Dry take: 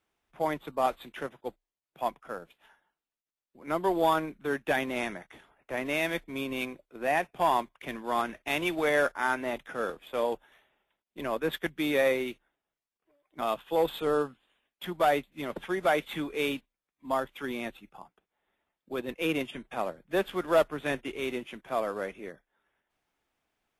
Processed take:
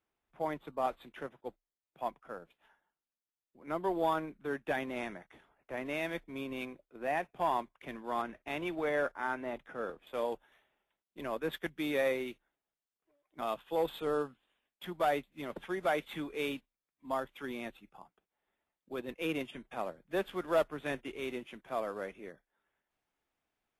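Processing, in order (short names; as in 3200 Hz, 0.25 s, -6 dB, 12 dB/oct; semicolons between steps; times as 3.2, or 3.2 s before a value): high shelf 3000 Hz -7 dB, from 8.22 s -12 dB, from 10.07 s -2 dB; gain -5.5 dB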